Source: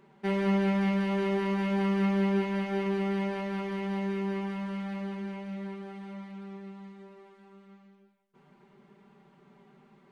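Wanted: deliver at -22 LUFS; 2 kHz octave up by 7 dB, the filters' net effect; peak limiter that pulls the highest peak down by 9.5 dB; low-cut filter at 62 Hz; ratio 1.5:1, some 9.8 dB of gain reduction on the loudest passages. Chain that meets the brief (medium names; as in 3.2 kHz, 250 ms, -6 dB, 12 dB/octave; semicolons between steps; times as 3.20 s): high-pass 62 Hz; peaking EQ 2 kHz +8 dB; compression 1.5:1, threshold -51 dBFS; trim +22 dB; peak limiter -13.5 dBFS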